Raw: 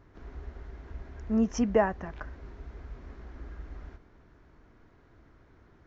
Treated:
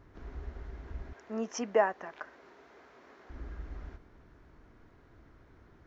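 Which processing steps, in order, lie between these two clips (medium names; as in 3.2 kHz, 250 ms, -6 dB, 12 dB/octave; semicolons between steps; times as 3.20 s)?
1.13–3.30 s: high-pass 440 Hz 12 dB/octave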